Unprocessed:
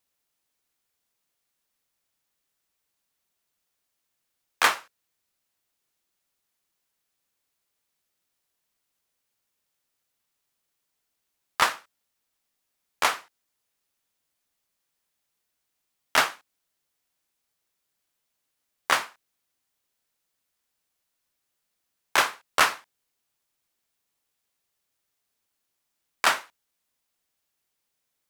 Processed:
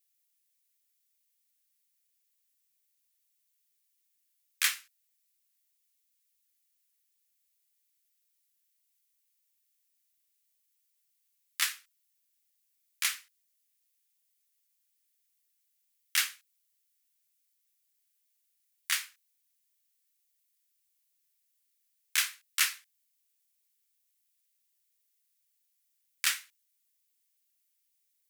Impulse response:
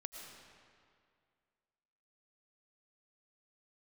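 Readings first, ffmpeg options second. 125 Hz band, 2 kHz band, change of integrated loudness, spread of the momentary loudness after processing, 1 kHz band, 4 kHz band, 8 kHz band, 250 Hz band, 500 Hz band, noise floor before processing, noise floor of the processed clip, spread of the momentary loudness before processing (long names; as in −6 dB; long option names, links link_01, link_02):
below −40 dB, −8.5 dB, −6.0 dB, 15 LU, −21.0 dB, −3.5 dB, +0.5 dB, below −40 dB, below −40 dB, −80 dBFS, −77 dBFS, 14 LU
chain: -af "highpass=frequency=1900:width_type=q:width=1.6,aderivative"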